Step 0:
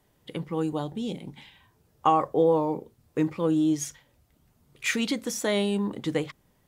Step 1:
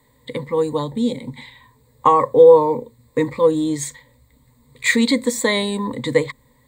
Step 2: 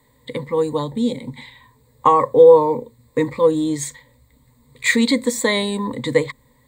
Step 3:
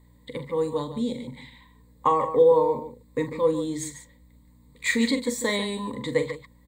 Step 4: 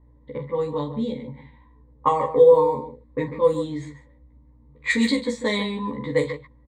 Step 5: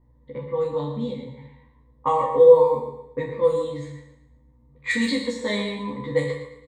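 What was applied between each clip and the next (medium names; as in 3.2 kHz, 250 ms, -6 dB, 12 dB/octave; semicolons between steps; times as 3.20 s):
rippled EQ curve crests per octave 1, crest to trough 17 dB; trim +5.5 dB
no audible change
hum 60 Hz, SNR 29 dB; on a send: loudspeakers at several distances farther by 15 m -11 dB, 50 m -11 dB; on the sum: trim -7.5 dB
doubling 14 ms -2 dB; level-controlled noise filter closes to 940 Hz, open at -15 dBFS
on a send: feedback delay 112 ms, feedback 39%, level -12 dB; on the sum: two-slope reverb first 0.54 s, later 1.6 s, from -27 dB, DRR 1.5 dB; trim -4 dB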